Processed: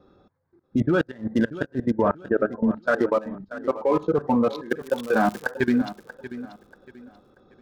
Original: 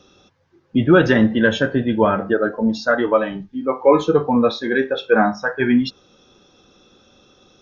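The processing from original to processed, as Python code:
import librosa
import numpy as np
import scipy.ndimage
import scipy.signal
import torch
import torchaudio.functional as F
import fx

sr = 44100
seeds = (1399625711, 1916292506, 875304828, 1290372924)

y = fx.wiener(x, sr, points=15)
y = fx.lowpass(y, sr, hz=1900.0, slope=24, at=(1.9, 2.82), fade=0.02)
y = fx.level_steps(y, sr, step_db=19)
y = fx.dmg_crackle(y, sr, seeds[0], per_s=fx.line((4.7, 320.0), (5.49, 140.0)), level_db=-27.0, at=(4.7, 5.49), fade=0.02)
y = fx.gate_flip(y, sr, shuts_db=-9.0, range_db=-26)
y = fx.echo_feedback(y, sr, ms=635, feedback_pct=31, wet_db=-14.5)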